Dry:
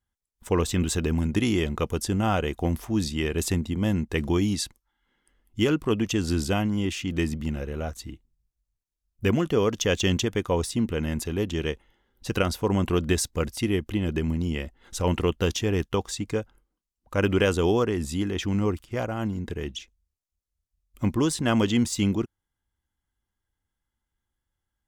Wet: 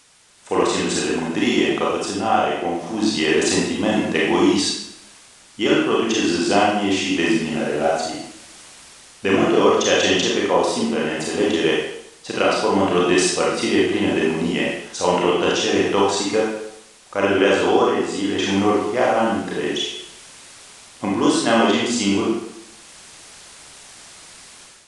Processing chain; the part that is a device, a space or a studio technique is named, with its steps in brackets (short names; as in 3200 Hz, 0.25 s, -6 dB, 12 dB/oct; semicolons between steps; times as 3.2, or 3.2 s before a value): filmed off a television (BPF 300–6900 Hz; bell 750 Hz +5.5 dB 0.47 oct; reverb RT60 0.75 s, pre-delay 29 ms, DRR -5 dB; white noise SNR 24 dB; AGC; gain -2.5 dB; AAC 96 kbps 22050 Hz)